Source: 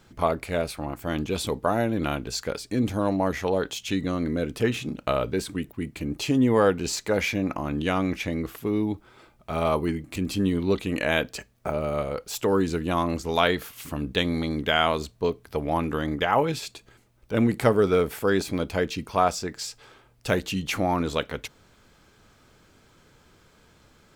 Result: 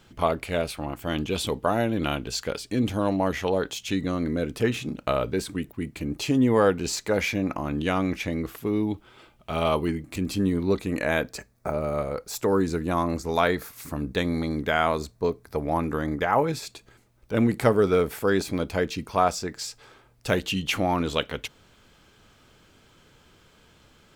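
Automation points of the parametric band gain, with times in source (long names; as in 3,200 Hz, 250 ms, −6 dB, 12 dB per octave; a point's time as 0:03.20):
parametric band 3,000 Hz 0.43 octaves
+6 dB
from 0:03.51 −1 dB
from 0:08.91 +8 dB
from 0:09.87 −3 dB
from 0:10.44 −11 dB
from 0:16.67 −2 dB
from 0:20.33 +6 dB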